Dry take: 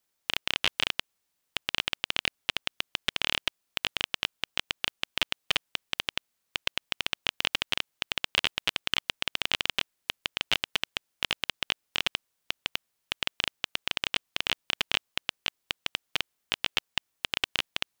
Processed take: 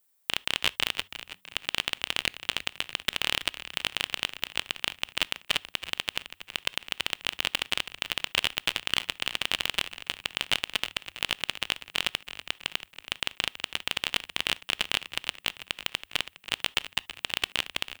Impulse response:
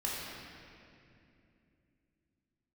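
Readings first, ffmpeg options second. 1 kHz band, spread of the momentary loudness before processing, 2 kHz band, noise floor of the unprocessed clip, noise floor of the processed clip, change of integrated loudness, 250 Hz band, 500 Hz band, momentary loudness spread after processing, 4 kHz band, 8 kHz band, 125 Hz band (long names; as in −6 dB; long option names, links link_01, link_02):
+0.5 dB, 7 LU, +1.0 dB, −79 dBFS, −66 dBFS, +1.0 dB, +0.5 dB, +0.5 dB, 6 LU, +0.5 dB, +3.5 dB, +1.0 dB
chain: -filter_complex "[0:a]aexciter=amount=1.1:drive=9.9:freq=7800,asplit=6[link_01][link_02][link_03][link_04][link_05][link_06];[link_02]adelay=326,afreqshift=-96,volume=-13dB[link_07];[link_03]adelay=652,afreqshift=-192,volume=-19.4dB[link_08];[link_04]adelay=978,afreqshift=-288,volume=-25.8dB[link_09];[link_05]adelay=1304,afreqshift=-384,volume=-32.1dB[link_10];[link_06]adelay=1630,afreqshift=-480,volume=-38.5dB[link_11];[link_01][link_07][link_08][link_09][link_10][link_11]amix=inputs=6:normalize=0,asplit=2[link_12][link_13];[1:a]atrim=start_sample=2205,atrim=end_sample=3528[link_14];[link_13][link_14]afir=irnorm=-1:irlink=0,volume=-22.5dB[link_15];[link_12][link_15]amix=inputs=2:normalize=0"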